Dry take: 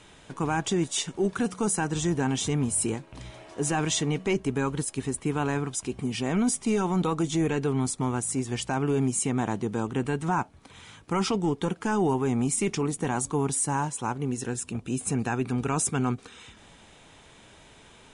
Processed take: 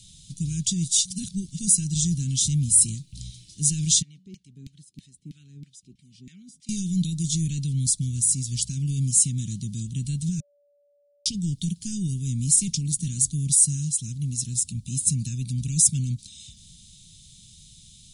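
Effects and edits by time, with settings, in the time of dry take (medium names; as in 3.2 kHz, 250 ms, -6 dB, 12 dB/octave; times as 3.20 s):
1.05–1.59 s: reverse
4.02–6.69 s: LFO band-pass saw down 3.1 Hz 300–2100 Hz
10.40–11.26 s: bleep 576 Hz -7.5 dBFS
whole clip: elliptic band-stop 170–4000 Hz, stop band 70 dB; treble shelf 3.8 kHz +6.5 dB; trim +5.5 dB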